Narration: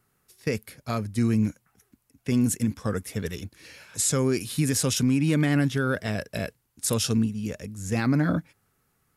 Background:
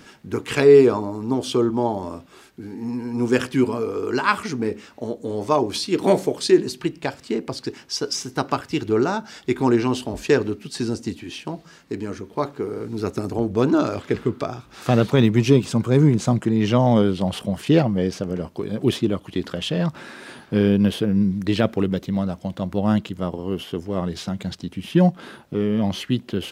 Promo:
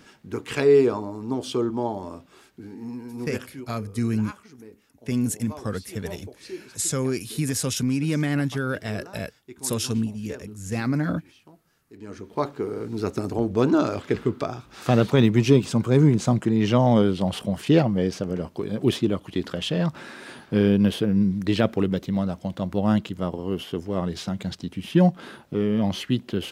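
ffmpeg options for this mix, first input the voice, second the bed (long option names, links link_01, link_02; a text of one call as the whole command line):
ffmpeg -i stem1.wav -i stem2.wav -filter_complex "[0:a]adelay=2800,volume=-1.5dB[link_01];[1:a]volume=15dB,afade=type=out:start_time=2.66:duration=0.98:silence=0.149624,afade=type=in:start_time=11.92:duration=0.45:silence=0.1[link_02];[link_01][link_02]amix=inputs=2:normalize=0" out.wav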